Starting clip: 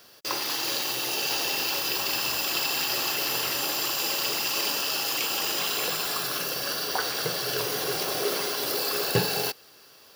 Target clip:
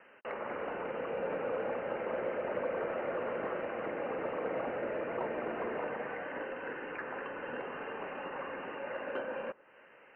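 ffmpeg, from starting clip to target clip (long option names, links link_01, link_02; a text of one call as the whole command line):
ffmpeg -i in.wav -filter_complex "[0:a]acrossover=split=2100[link_01][link_02];[link_01]acompressor=threshold=-45dB:ratio=8[link_03];[link_03][link_02]amix=inputs=2:normalize=0,highshelf=frequency=2200:gain=10,lowpass=frequency=2700:width_type=q:width=0.5098,lowpass=frequency=2700:width_type=q:width=0.6013,lowpass=frequency=2700:width_type=q:width=0.9,lowpass=frequency=2700:width_type=q:width=2.563,afreqshift=-3200,asoftclip=type=tanh:threshold=-25dB,acrossover=split=170 2200:gain=0.126 1 0.0708[link_04][link_05][link_06];[link_04][link_05][link_06]amix=inputs=3:normalize=0" out.wav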